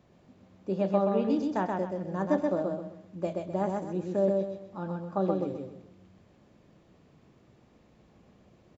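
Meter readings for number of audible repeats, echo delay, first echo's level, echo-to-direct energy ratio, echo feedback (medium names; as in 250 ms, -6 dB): 4, 128 ms, -3.0 dB, -2.5 dB, 33%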